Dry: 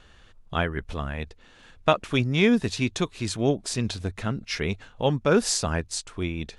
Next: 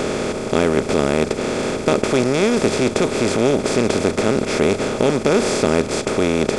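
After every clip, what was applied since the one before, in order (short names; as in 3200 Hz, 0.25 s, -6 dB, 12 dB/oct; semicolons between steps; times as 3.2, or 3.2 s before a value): per-bin compression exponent 0.2; bell 370 Hz +7 dB 1.3 oct; gain -5.5 dB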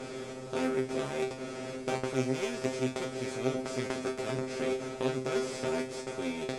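added harmonics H 3 -14 dB, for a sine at -1 dBFS; resonator 130 Hz, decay 0.29 s, harmonics all, mix 100%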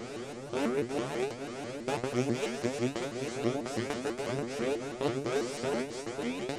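shaped vibrato saw up 6.1 Hz, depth 250 cents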